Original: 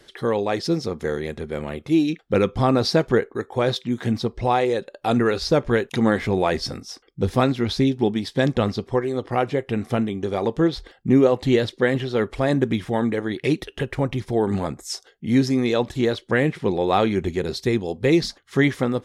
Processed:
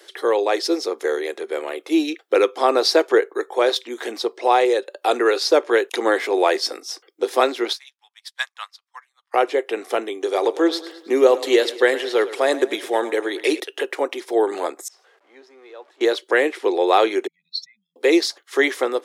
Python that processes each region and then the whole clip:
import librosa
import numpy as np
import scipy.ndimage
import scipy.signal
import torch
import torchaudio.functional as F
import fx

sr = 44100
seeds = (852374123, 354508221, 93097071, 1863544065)

y = fx.chain(x, sr, fx.steep_highpass(hz=990.0, slope=36),
    fx.high_shelf(hz=9000.0, db=4.5),
    fx.upward_expand(threshold_db=-48.0, expansion=2.5), at=(7.73, 9.34))
y = fx.chain(y, sr, fx.high_shelf(hz=5600.0, db=5.5),
    fx.echo_feedback(ms=107, feedback_pct=51, wet_db=-15.5), at=(10.12, 13.6))
y = fx.chain(y, sr, fx.zero_step(step_db=-31.0),
    fx.lowpass(hz=1000.0, slope=12),
    fx.differentiator(), at=(14.88, 16.01))
y = fx.chain(y, sr, fx.spec_expand(power=2.5),
    fx.brickwall_bandstop(low_hz=190.0, high_hz=1900.0), at=(17.27, 17.96))
y = scipy.signal.sosfilt(scipy.signal.butter(8, 330.0, 'highpass', fs=sr, output='sos'), y)
y = fx.high_shelf(y, sr, hz=8300.0, db=6.5)
y = y * 10.0 ** (4.0 / 20.0)